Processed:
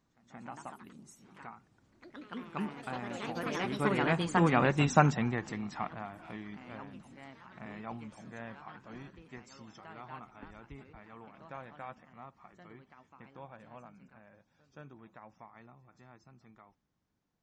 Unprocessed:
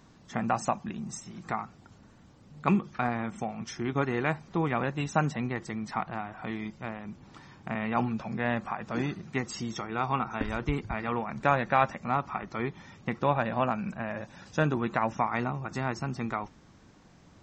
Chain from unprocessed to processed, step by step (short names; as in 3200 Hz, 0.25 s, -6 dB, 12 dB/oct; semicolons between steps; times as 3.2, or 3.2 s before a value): Doppler pass-by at 4.81, 14 m/s, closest 5 m; pre-echo 0.176 s -20 dB; echoes that change speed 0.169 s, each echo +3 st, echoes 3, each echo -6 dB; gain +4 dB